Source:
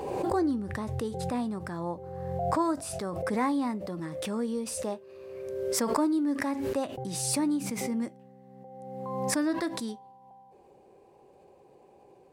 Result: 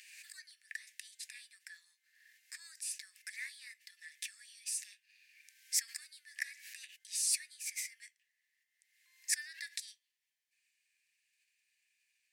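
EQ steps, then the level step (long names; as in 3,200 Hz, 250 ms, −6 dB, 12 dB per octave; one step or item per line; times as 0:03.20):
dynamic equaliser 3,200 Hz, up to −4 dB, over −55 dBFS, Q 3
Chebyshev high-pass with heavy ripple 1,700 Hz, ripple 3 dB
0.0 dB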